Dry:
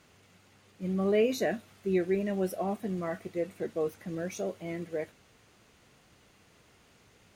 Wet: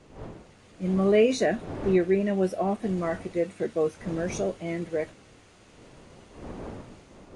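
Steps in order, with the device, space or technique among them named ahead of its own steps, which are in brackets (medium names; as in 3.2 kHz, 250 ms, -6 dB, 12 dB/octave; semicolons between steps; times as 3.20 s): 1.43–2.82 s: peaking EQ 12 kHz -4 dB 2.5 oct; smartphone video outdoors (wind noise 450 Hz -48 dBFS; level rider gain up to 5.5 dB; AAC 48 kbps 22.05 kHz)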